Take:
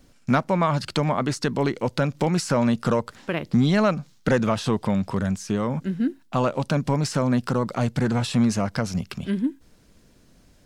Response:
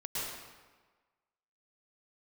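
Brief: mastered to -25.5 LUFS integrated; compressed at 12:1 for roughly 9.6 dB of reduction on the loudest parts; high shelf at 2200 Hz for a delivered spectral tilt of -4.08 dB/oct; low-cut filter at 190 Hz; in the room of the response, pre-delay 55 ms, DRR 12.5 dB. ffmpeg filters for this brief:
-filter_complex "[0:a]highpass=190,highshelf=f=2.2k:g=7.5,acompressor=threshold=-24dB:ratio=12,asplit=2[a][b];[1:a]atrim=start_sample=2205,adelay=55[c];[b][c]afir=irnorm=-1:irlink=0,volume=-16.5dB[d];[a][d]amix=inputs=2:normalize=0,volume=4dB"

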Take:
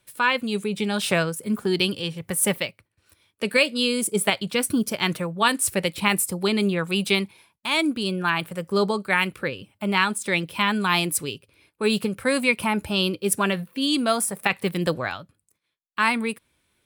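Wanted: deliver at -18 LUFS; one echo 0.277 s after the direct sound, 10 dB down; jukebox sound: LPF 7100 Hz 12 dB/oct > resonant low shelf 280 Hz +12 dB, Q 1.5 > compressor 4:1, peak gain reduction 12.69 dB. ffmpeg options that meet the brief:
-af "lowpass=7.1k,lowshelf=f=280:t=q:w=1.5:g=12,aecho=1:1:277:0.316,acompressor=threshold=-22dB:ratio=4,volume=7dB"

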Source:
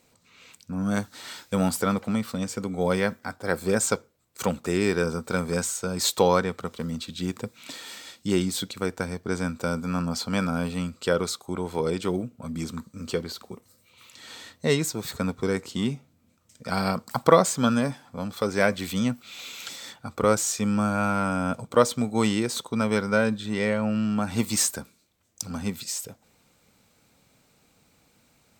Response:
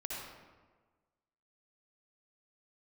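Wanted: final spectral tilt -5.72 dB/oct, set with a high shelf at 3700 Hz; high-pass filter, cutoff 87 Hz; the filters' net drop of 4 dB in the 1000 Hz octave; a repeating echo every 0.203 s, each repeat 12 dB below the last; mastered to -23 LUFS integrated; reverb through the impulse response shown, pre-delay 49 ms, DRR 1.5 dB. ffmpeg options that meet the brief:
-filter_complex "[0:a]highpass=87,equalizer=f=1k:t=o:g=-4.5,highshelf=f=3.7k:g=-9,aecho=1:1:203|406|609:0.251|0.0628|0.0157,asplit=2[a][b];[1:a]atrim=start_sample=2205,adelay=49[c];[b][c]afir=irnorm=-1:irlink=0,volume=-2.5dB[d];[a][d]amix=inputs=2:normalize=0,volume=2.5dB"

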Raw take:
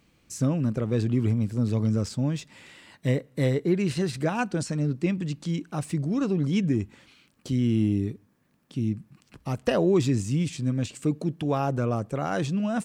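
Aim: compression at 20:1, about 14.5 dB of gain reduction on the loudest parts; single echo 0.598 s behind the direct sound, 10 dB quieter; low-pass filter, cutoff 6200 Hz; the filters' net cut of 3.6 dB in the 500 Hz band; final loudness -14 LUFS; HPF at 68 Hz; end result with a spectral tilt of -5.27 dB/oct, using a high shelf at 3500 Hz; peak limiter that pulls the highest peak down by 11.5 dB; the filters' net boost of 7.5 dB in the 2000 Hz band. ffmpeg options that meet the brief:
-af "highpass=68,lowpass=6.2k,equalizer=f=500:t=o:g=-5.5,equalizer=f=2k:t=o:g=9,highshelf=f=3.5k:g=4.5,acompressor=threshold=-34dB:ratio=20,alimiter=level_in=10dB:limit=-24dB:level=0:latency=1,volume=-10dB,aecho=1:1:598:0.316,volume=29dB"

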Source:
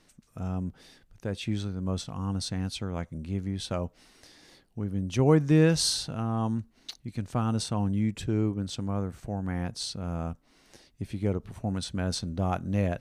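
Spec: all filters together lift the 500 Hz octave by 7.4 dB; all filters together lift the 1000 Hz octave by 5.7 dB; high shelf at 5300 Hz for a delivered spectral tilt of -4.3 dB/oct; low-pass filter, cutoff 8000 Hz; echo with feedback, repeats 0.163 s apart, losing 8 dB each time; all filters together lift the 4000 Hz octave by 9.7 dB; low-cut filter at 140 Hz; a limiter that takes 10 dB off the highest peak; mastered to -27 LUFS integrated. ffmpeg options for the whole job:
-af "highpass=140,lowpass=8k,equalizer=f=500:t=o:g=7.5,equalizer=f=1k:t=o:g=4,equalizer=f=4k:t=o:g=8,highshelf=f=5.3k:g=7,alimiter=limit=-14dB:level=0:latency=1,aecho=1:1:163|326|489|652|815:0.398|0.159|0.0637|0.0255|0.0102,volume=1dB"

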